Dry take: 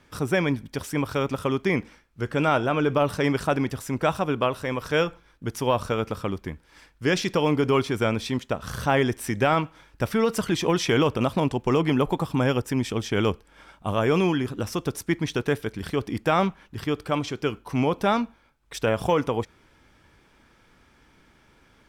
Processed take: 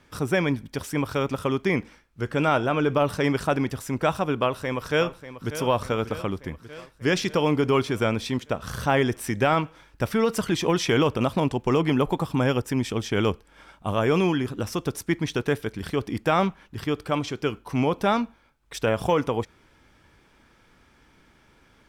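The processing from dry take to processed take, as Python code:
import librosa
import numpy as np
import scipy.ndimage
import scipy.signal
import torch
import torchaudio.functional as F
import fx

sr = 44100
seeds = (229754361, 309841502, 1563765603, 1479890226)

y = fx.echo_throw(x, sr, start_s=4.4, length_s=1.15, ms=590, feedback_pct=65, wet_db=-12.5)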